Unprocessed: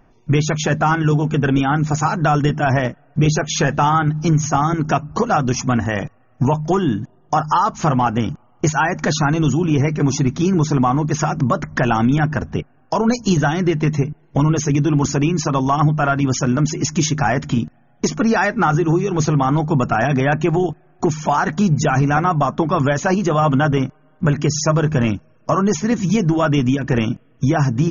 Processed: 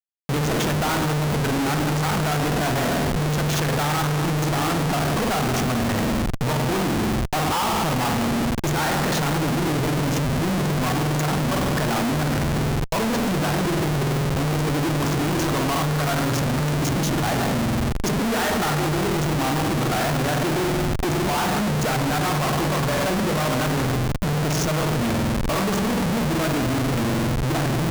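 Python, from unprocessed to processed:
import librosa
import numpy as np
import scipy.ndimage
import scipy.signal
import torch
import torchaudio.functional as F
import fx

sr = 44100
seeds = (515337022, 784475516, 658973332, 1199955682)

y = fx.rev_spring(x, sr, rt60_s=1.7, pass_ms=(47,), chirp_ms=50, drr_db=2.0)
y = fx.schmitt(y, sr, flips_db=-24.0)
y = F.gain(torch.from_numpy(y), -6.5).numpy()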